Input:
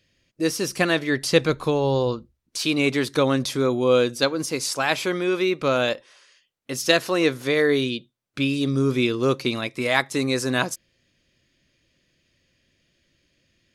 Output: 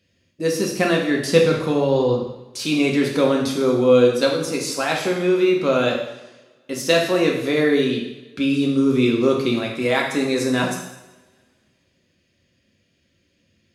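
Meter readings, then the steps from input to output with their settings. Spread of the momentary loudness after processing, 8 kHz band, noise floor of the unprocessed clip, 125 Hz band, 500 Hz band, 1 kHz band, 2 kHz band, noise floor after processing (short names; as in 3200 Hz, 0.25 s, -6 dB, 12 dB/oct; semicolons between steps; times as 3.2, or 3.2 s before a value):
9 LU, 0.0 dB, -72 dBFS, +1.0 dB, +4.0 dB, +1.5 dB, 0.0 dB, -66 dBFS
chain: HPF 270 Hz 6 dB/oct; low shelf 380 Hz +12 dB; two-slope reverb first 0.84 s, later 2.1 s, from -21 dB, DRR -1 dB; gain -3.5 dB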